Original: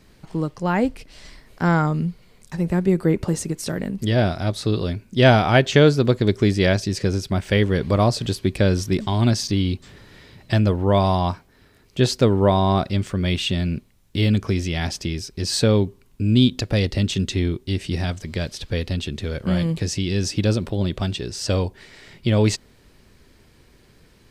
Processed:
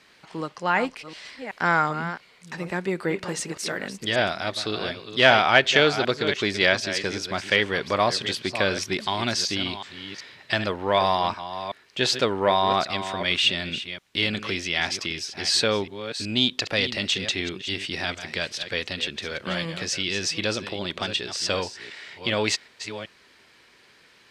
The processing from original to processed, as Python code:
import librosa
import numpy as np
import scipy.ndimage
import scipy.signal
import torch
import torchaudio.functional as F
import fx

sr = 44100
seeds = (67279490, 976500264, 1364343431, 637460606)

y = fx.reverse_delay(x, sr, ms=378, wet_db=-11.0)
y = 10.0 ** (-5.5 / 20.0) * np.tanh(y / 10.0 ** (-5.5 / 20.0))
y = fx.bandpass_q(y, sr, hz=2300.0, q=0.64)
y = y * librosa.db_to_amplitude(6.0)